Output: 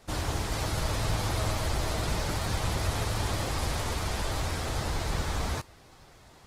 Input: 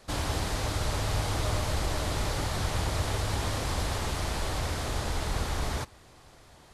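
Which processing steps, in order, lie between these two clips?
speed mistake 24 fps film run at 25 fps; Opus 16 kbps 48000 Hz

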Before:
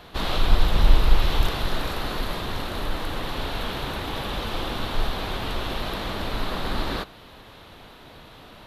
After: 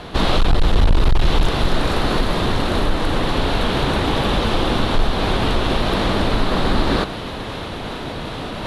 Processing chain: steep low-pass 11000 Hz 48 dB/oct; low shelf 450 Hz +10 dB; in parallel at +2.5 dB: compressor 6:1, threshold -19 dBFS, peak gain reduction 19 dB; on the sum: overloaded stage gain 3 dB; reverse; upward compressor, threshold -18 dBFS; reverse; low shelf 160 Hz -8 dB; gain +2 dB

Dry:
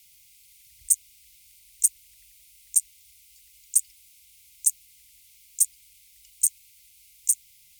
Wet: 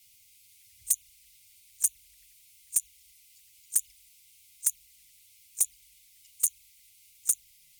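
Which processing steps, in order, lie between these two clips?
pre-echo 36 ms -23 dB; envelope flanger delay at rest 11.3 ms, full sweep at -20 dBFS

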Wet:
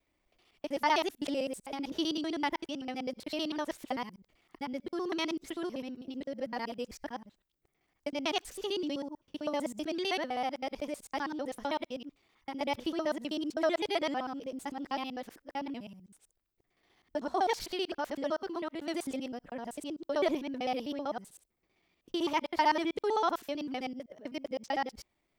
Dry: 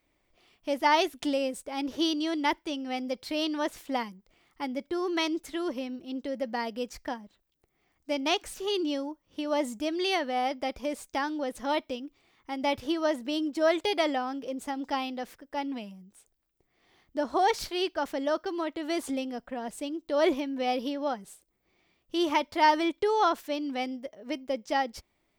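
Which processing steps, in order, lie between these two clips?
local time reversal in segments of 64 ms; vibrato 4.8 Hz 25 cents; gain -4.5 dB

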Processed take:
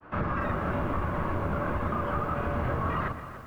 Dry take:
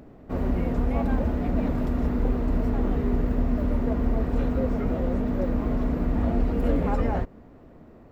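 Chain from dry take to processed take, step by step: octaver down 1 oct, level +2 dB; bell 520 Hz +10.5 dB 0.64 oct; notches 60/120/180/240 Hz; grains 0.195 s, grains 20/s, pitch spread up and down by 0 st; resonant high shelf 1500 Hz -11 dB, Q 1.5; speed mistake 33 rpm record played at 78 rpm; compressor 10:1, threshold -24 dBFS, peak gain reduction 6.5 dB; thinning echo 0.121 s, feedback 50%, high-pass 150 Hz, level -14 dB; lo-fi delay 0.288 s, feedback 55%, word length 8-bit, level -14 dB; gain -1.5 dB

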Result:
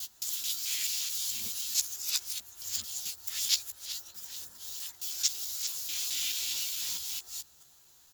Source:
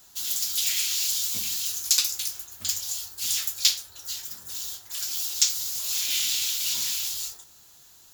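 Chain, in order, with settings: local time reversal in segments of 0.218 s; doubler 14 ms -7 dB; gain -7.5 dB

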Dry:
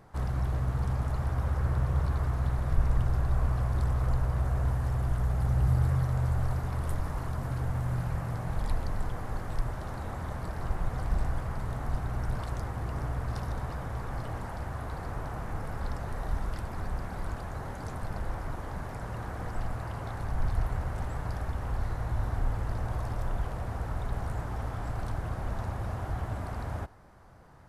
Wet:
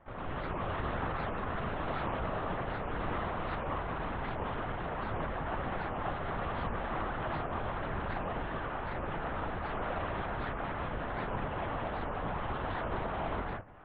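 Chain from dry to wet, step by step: elliptic band-pass 220–3000 Hz, stop band 50 dB; time stretch by phase-locked vocoder 0.5×; in parallel at -8 dB: bit-crush 6-bit; on the sum: non-linear reverb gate 0.21 s rising, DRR -7.5 dB; LPC vocoder at 8 kHz whisper; record warp 78 rpm, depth 250 cents

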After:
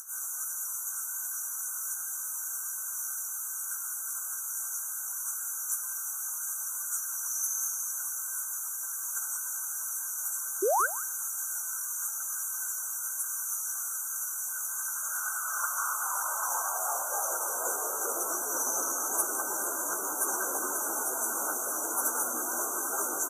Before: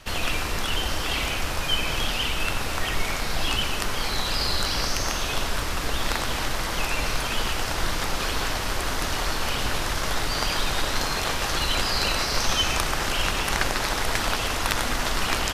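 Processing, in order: RIAA curve recording; upward compressor, threshold -29 dBFS; high-pass sweep 2400 Hz -> 320 Hz, 9.63–12.31; plain phase-vocoder stretch 1.5×; painted sound rise, 10.62–10.88, 350–1800 Hz -20 dBFS; brick-wall FIR band-stop 1600–5800 Hz; outdoor echo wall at 30 m, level -16 dB; gain -5.5 dB

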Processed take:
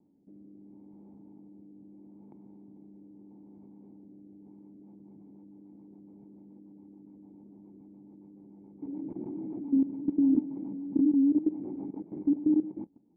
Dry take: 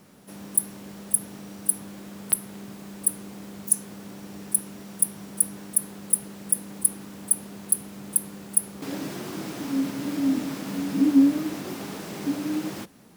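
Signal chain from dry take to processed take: vocal tract filter u; rotary speaker horn 0.75 Hz, later 7 Hz, at 4.31; level quantiser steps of 15 dB; gain +8 dB

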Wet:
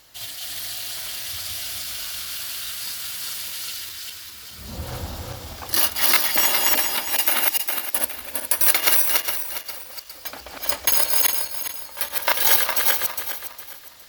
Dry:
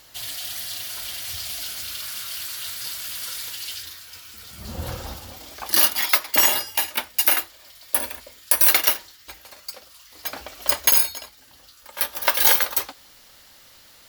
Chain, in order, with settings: regenerating reverse delay 0.205 s, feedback 56%, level 0 dB; gain -2.5 dB

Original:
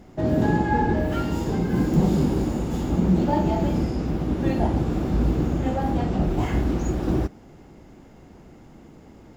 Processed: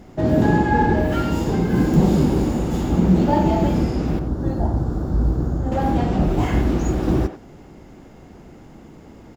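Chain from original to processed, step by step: 4.19–5.72 EQ curve 110 Hz 0 dB, 190 Hz -6 dB, 1500 Hz -6 dB, 2400 Hz -24 dB, 4500 Hz -9 dB; speakerphone echo 90 ms, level -9 dB; gain +4 dB

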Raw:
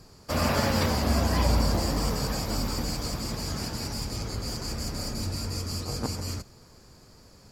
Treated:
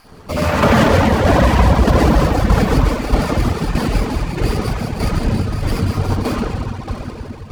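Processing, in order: random spectral dropouts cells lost 21%; 5.17–5.61 LPF 5900 Hz 12 dB/oct; reverb RT60 5.5 s, pre-delay 65 ms, DRR -12 dB; reverb removal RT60 1.8 s; tremolo saw down 1.6 Hz, depth 55%; maximiser +11.5 dB; running maximum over 5 samples; gain -1.5 dB

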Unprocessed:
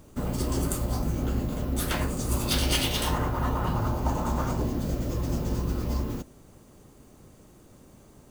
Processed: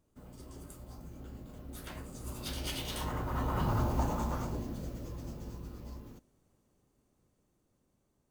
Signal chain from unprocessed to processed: Doppler pass-by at 3.82, 7 m/s, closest 2.4 m; in parallel at -10 dB: hard clip -32 dBFS, distortion -6 dB; on the sum: gain -4 dB

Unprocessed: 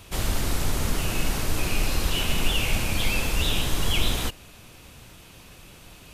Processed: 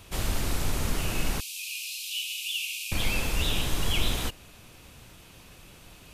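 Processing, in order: rattling part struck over -26 dBFS, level -29 dBFS; 1.4–2.92 steep high-pass 2400 Hz 96 dB/oct; gain -3 dB

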